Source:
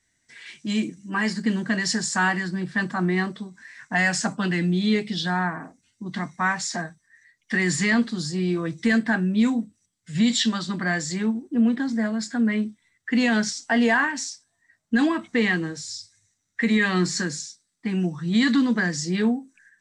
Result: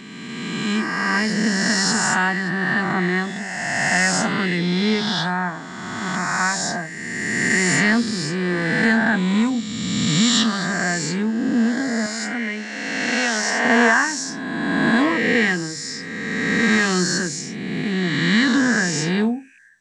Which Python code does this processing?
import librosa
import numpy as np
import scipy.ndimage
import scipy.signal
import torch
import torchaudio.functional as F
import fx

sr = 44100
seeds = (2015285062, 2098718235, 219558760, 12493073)

y = fx.spec_swells(x, sr, rise_s=2.28)
y = fx.highpass(y, sr, hz=510.0, slope=6, at=(12.06, 13.65))